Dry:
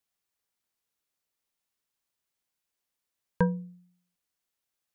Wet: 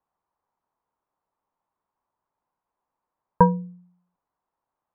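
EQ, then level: resonant low-pass 970 Hz, resonance Q 3.5; +6.0 dB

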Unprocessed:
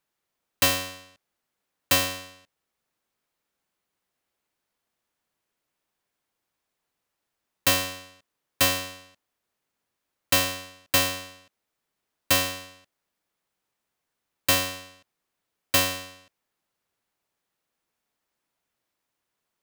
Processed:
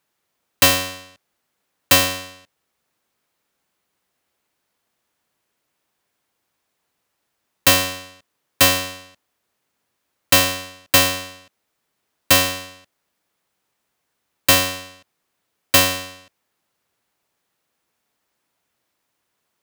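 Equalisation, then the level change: high-pass 44 Hz; +7.5 dB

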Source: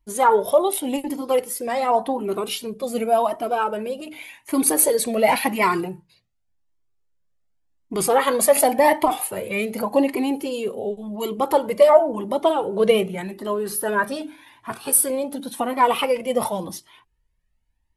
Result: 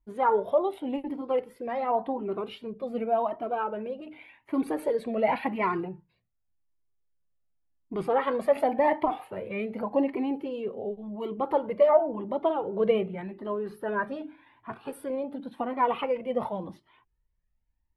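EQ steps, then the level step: distance through air 490 m; -5.5 dB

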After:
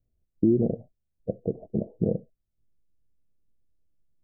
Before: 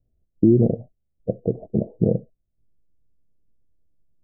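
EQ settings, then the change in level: dynamic bell 120 Hz, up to -6 dB, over -35 dBFS, Q 6.1; -5.5 dB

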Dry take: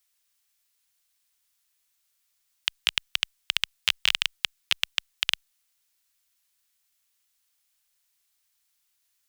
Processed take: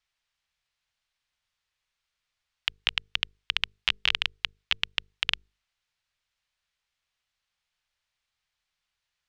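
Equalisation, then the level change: low-pass 3.6 kHz 12 dB/octave; bass shelf 320 Hz +6.5 dB; hum notches 50/100/150/200/250/300/350/400/450 Hz; 0.0 dB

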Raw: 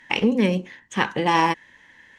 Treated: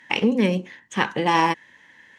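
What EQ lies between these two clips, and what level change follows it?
high-pass 100 Hz; 0.0 dB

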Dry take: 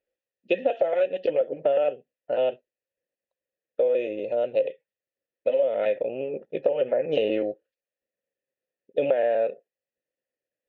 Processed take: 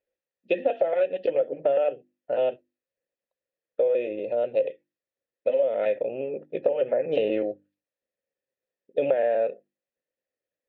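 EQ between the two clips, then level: distance through air 110 m; hum notches 50/100/150/200/250/300/350 Hz; band-stop 2.9 kHz, Q 23; 0.0 dB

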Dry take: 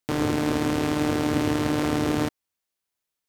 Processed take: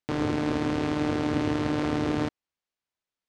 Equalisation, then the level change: distance through air 92 m; -2.5 dB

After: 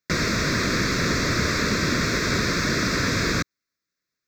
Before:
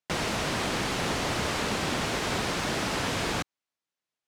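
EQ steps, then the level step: static phaser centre 3 kHz, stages 6; +9.0 dB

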